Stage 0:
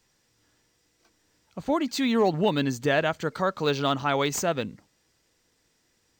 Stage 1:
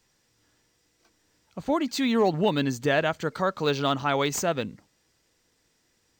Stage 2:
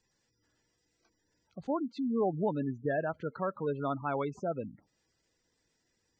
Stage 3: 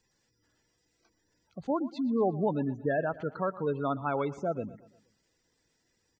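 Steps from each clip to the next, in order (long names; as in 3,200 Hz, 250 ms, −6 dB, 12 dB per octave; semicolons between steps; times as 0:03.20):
no processing that can be heard
gate on every frequency bin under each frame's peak −15 dB strong; treble cut that deepens with the level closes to 1,700 Hz, closed at −25.5 dBFS; level −7 dB
repeating echo 118 ms, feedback 47%, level −18 dB; level +2.5 dB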